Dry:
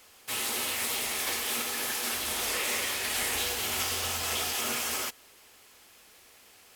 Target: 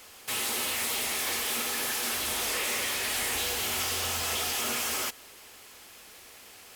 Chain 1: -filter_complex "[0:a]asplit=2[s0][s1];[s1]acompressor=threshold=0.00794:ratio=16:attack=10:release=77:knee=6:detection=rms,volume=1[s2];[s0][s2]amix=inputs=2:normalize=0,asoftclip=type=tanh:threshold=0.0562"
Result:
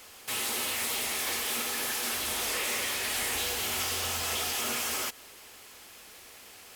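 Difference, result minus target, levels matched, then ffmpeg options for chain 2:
compression: peak gain reduction +7 dB
-filter_complex "[0:a]asplit=2[s0][s1];[s1]acompressor=threshold=0.0188:ratio=16:attack=10:release=77:knee=6:detection=rms,volume=1[s2];[s0][s2]amix=inputs=2:normalize=0,asoftclip=type=tanh:threshold=0.0562"

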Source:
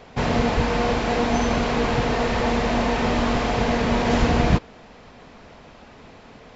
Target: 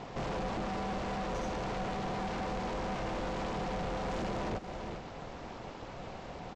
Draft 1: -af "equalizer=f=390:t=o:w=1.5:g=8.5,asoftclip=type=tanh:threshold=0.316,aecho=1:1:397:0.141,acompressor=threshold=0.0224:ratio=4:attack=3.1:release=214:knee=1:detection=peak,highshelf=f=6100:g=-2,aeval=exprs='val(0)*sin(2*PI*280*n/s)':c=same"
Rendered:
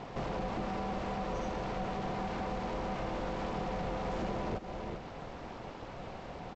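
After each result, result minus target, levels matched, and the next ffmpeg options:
saturation: distortion -8 dB; 8 kHz band -4.5 dB
-af "equalizer=f=390:t=o:w=1.5:g=8.5,asoftclip=type=tanh:threshold=0.133,aecho=1:1:397:0.141,acompressor=threshold=0.0224:ratio=4:attack=3.1:release=214:knee=1:detection=peak,highshelf=f=6100:g=-2,aeval=exprs='val(0)*sin(2*PI*280*n/s)':c=same"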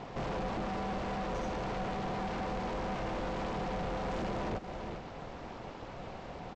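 8 kHz band -3.5 dB
-af "equalizer=f=390:t=o:w=1.5:g=8.5,asoftclip=type=tanh:threshold=0.133,aecho=1:1:397:0.141,acompressor=threshold=0.0224:ratio=4:attack=3.1:release=214:knee=1:detection=peak,highshelf=f=6100:g=5,aeval=exprs='val(0)*sin(2*PI*280*n/s)':c=same"

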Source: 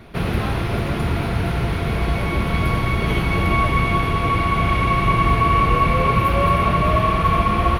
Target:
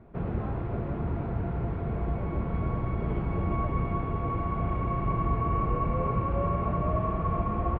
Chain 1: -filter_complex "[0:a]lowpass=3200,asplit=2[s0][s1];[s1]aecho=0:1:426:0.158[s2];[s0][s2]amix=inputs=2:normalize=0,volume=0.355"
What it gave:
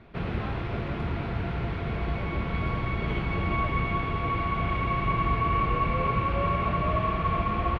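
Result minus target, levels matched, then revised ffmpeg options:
4 kHz band +16.0 dB
-filter_complex "[0:a]lowpass=960,asplit=2[s0][s1];[s1]aecho=0:1:426:0.158[s2];[s0][s2]amix=inputs=2:normalize=0,volume=0.355"

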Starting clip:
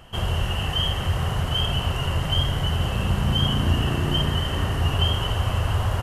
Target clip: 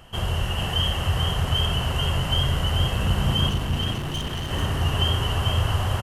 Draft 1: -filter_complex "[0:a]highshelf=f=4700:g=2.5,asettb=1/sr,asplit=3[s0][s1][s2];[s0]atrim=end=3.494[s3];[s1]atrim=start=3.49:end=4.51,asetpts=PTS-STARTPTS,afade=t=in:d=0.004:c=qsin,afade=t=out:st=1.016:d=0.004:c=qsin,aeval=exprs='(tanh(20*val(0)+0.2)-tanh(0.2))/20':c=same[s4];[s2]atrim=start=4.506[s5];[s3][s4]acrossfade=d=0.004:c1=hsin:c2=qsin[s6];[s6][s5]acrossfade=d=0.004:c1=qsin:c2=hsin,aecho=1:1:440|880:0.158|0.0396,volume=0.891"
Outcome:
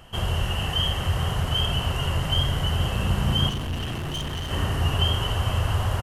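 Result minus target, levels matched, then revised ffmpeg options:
echo-to-direct -11 dB
-filter_complex "[0:a]highshelf=f=4700:g=2.5,asettb=1/sr,asplit=3[s0][s1][s2];[s0]atrim=end=3.494[s3];[s1]atrim=start=3.49:end=4.51,asetpts=PTS-STARTPTS,afade=t=in:d=0.004:c=qsin,afade=t=out:st=1.016:d=0.004:c=qsin,aeval=exprs='(tanh(20*val(0)+0.2)-tanh(0.2))/20':c=same[s4];[s2]atrim=start=4.506[s5];[s3][s4]acrossfade=d=0.004:c1=hsin:c2=qsin[s6];[s6][s5]acrossfade=d=0.004:c1=qsin:c2=hsin,aecho=1:1:440|880|1320:0.562|0.141|0.0351,volume=0.891"

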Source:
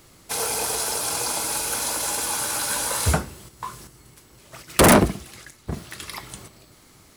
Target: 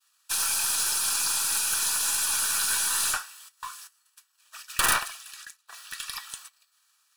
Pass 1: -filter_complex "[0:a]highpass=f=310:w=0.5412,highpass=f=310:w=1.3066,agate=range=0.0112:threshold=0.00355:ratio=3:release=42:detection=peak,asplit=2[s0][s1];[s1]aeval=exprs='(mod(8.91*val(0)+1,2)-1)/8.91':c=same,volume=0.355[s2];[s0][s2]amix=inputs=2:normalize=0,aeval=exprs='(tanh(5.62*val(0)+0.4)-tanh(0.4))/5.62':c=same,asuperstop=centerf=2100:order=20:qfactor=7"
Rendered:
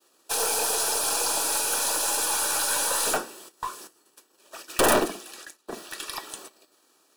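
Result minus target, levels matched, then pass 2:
250 Hz band +16.5 dB
-filter_complex "[0:a]highpass=f=1200:w=0.5412,highpass=f=1200:w=1.3066,agate=range=0.0112:threshold=0.00355:ratio=3:release=42:detection=peak,asplit=2[s0][s1];[s1]aeval=exprs='(mod(8.91*val(0)+1,2)-1)/8.91':c=same,volume=0.355[s2];[s0][s2]amix=inputs=2:normalize=0,aeval=exprs='(tanh(5.62*val(0)+0.4)-tanh(0.4))/5.62':c=same,asuperstop=centerf=2100:order=20:qfactor=7"

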